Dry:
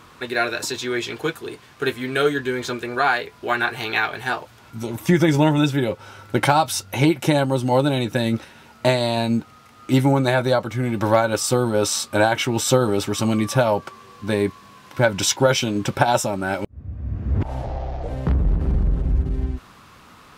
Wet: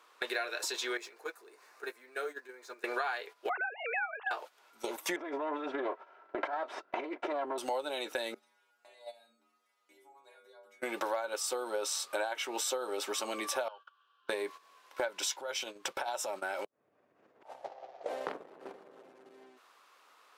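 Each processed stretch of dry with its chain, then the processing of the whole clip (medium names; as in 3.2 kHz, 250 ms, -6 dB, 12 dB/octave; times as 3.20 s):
0.97–2.84 s: companding laws mixed up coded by mu + peaking EQ 3.2 kHz -13 dB 0.41 oct + compression 2:1, threshold -41 dBFS
3.49–4.31 s: formants replaced by sine waves + distance through air 320 m
5.16–7.58 s: comb filter that takes the minimum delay 3 ms + low-pass 1.3 kHz + compressor with a negative ratio -23 dBFS
8.34–10.82 s: treble shelf 10 kHz +4 dB + compression, threshold -24 dBFS + inharmonic resonator 72 Hz, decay 0.83 s, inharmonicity 0.008
13.68–14.29 s: two resonant band-passes 2.1 kHz, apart 1.1 oct + distance through air 81 m
15.32–18.06 s: high-pass 65 Hz + resonant low shelf 190 Hz +6.5 dB, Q 1.5 + compression, threshold -24 dBFS
whole clip: high-pass 430 Hz 24 dB/octave; gate -36 dBFS, range -15 dB; compression 6:1, threshold -34 dBFS; trim +1 dB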